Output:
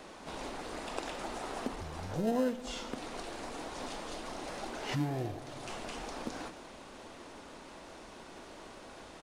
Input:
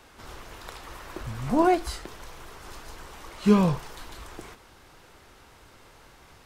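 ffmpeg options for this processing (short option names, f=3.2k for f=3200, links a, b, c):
-filter_complex "[0:a]asplit=2[a][b];[b]acrusher=samples=27:mix=1:aa=0.000001,volume=-11dB[c];[a][c]amix=inputs=2:normalize=0,highshelf=f=2.8k:g=-10,aecho=1:1:83|166|249|332|415:0.1|0.059|0.0348|0.0205|0.0121,acompressor=threshold=-37dB:ratio=3,bass=f=250:g=-13,treble=f=4k:g=7,asetrate=30870,aresample=44100,volume=6dB"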